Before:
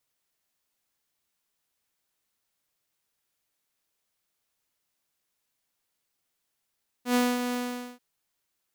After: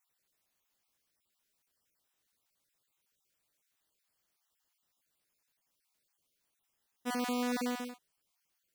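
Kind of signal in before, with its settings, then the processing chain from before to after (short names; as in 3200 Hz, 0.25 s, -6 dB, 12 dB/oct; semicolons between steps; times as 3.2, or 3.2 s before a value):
ADSR saw 246 Hz, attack 98 ms, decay 0.232 s, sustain -7.5 dB, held 0.49 s, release 0.448 s -17.5 dBFS
random spectral dropouts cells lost 28%; limiter -27 dBFS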